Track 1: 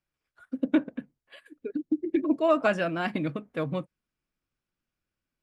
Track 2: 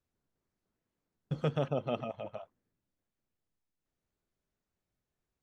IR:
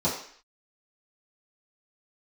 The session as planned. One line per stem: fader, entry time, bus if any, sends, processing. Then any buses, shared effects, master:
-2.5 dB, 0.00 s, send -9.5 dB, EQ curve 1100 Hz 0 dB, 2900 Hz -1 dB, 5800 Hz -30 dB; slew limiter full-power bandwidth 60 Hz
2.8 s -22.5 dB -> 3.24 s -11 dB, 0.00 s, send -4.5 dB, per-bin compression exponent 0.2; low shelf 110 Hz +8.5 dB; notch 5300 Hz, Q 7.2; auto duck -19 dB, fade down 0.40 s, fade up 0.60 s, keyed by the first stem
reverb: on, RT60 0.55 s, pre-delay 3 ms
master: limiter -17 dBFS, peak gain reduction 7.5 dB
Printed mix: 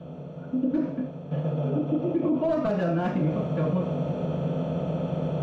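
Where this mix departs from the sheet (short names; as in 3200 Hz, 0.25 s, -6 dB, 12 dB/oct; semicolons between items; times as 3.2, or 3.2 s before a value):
stem 1 -2.5 dB -> -9.0 dB; reverb return +6.5 dB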